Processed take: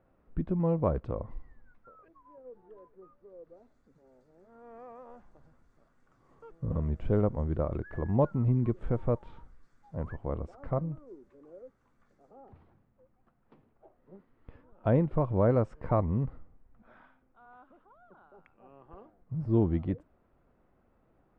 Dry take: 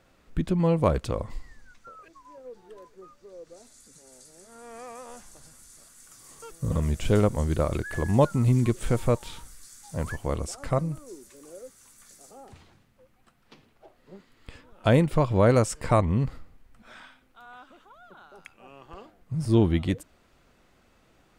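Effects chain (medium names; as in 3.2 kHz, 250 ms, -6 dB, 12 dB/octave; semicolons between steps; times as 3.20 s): low-pass 1.1 kHz 12 dB/octave; trim -5 dB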